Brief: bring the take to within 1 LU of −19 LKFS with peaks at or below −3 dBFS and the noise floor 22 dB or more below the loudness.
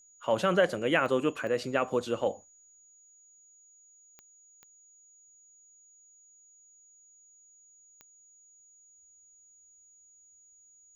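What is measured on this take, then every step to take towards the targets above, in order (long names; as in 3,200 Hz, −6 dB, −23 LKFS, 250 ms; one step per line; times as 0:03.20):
number of clicks 5; interfering tone 6,800 Hz; level of the tone −57 dBFS; integrated loudness −28.5 LKFS; sample peak −11.5 dBFS; target loudness −19.0 LKFS
→ click removal
notch filter 6,800 Hz, Q 30
level +9.5 dB
brickwall limiter −3 dBFS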